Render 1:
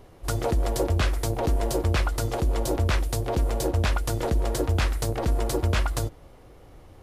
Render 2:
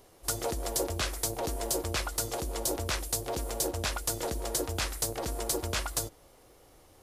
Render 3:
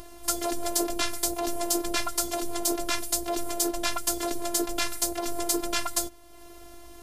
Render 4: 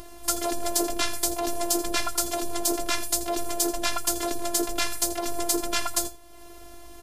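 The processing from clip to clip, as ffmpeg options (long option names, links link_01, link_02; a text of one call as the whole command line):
ffmpeg -i in.wav -af "bass=frequency=250:gain=-8,treble=frequency=4000:gain=11,volume=-5.5dB" out.wav
ffmpeg -i in.wav -af "aeval=exprs='val(0)+0.00126*(sin(2*PI*50*n/s)+sin(2*PI*2*50*n/s)/2+sin(2*PI*3*50*n/s)/3+sin(2*PI*4*50*n/s)/4+sin(2*PI*5*50*n/s)/5)':channel_layout=same,afftfilt=real='hypot(re,im)*cos(PI*b)':imag='0':win_size=512:overlap=0.75,acompressor=mode=upward:threshold=-43dB:ratio=2.5,volume=7.5dB" out.wav
ffmpeg -i in.wav -af "aecho=1:1:83:0.188,volume=1.5dB" out.wav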